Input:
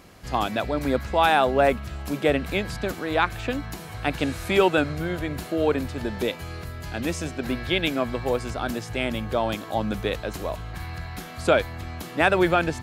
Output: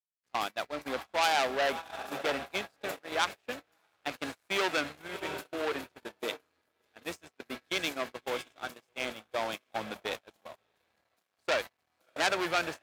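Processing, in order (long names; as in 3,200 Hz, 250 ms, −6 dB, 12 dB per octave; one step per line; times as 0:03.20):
feedback delay with all-pass diffusion 645 ms, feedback 49%, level −9 dB
dead-zone distortion −35.5 dBFS
noise gate −27 dBFS, range −32 dB
high-pass filter 720 Hz 6 dB per octave
saturating transformer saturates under 4,000 Hz
level −1 dB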